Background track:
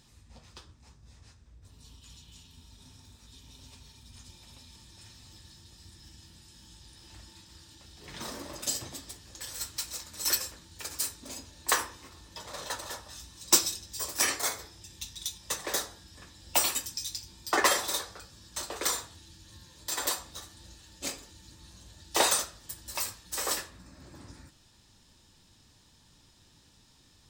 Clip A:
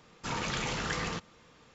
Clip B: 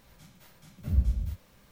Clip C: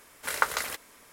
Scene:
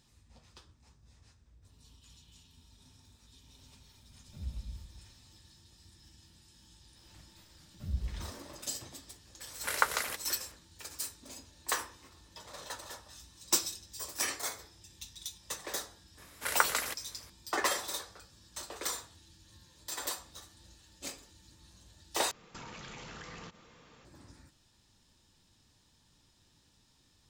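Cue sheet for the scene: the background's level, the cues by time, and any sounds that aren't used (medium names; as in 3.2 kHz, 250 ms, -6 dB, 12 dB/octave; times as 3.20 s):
background track -6.5 dB
3.49 s: add B -15.5 dB + backward echo that repeats 137 ms, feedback 44%, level -8 dB
6.96 s: add B -10 dB
9.40 s: add C -2.5 dB
16.18 s: add C -2.5 dB
22.31 s: replace with A + compression 12:1, threshold -43 dBFS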